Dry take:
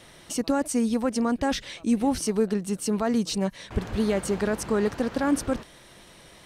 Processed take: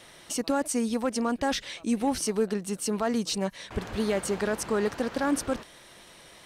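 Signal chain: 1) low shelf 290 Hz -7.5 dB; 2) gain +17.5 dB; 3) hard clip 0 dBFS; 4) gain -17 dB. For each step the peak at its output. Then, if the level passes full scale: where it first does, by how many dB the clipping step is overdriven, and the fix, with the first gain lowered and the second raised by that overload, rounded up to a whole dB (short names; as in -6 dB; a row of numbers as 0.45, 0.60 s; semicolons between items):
-14.5, +3.0, 0.0, -17.0 dBFS; step 2, 3.0 dB; step 2 +14.5 dB, step 4 -14 dB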